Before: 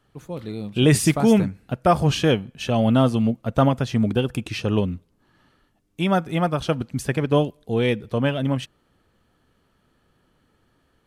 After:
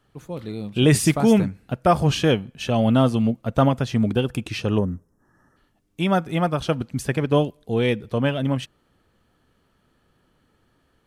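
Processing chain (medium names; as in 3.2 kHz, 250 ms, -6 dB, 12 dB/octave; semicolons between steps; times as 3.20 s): time-frequency box 4.78–5.57 s, 2–5.1 kHz -22 dB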